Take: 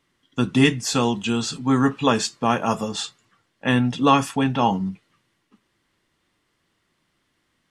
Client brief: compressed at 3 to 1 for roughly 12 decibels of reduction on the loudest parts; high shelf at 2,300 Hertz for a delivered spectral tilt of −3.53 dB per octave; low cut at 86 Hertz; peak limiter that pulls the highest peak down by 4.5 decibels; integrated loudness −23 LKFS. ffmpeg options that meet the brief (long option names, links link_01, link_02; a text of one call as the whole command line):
ffmpeg -i in.wav -af "highpass=86,highshelf=frequency=2300:gain=8,acompressor=threshold=-27dB:ratio=3,volume=6.5dB,alimiter=limit=-11.5dB:level=0:latency=1" out.wav